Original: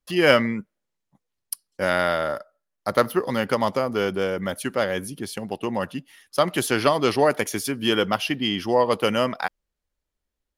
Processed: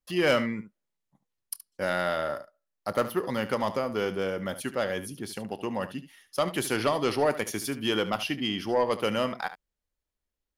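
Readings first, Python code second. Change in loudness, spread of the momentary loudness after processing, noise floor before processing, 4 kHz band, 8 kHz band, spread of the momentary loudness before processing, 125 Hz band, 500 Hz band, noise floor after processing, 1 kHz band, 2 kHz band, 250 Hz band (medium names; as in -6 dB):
-6.0 dB, 11 LU, -82 dBFS, -6.0 dB, -5.0 dB, 12 LU, -5.5 dB, -5.5 dB, under -85 dBFS, -6.0 dB, -6.5 dB, -5.5 dB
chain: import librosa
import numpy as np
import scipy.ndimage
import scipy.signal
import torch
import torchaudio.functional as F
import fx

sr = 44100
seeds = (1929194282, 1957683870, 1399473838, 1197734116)

y = 10.0 ** (-10.0 / 20.0) * np.tanh(x / 10.0 ** (-10.0 / 20.0))
y = fx.room_early_taps(y, sr, ms=(28, 73), db=(-17.5, -13.5))
y = y * 10.0 ** (-5.0 / 20.0)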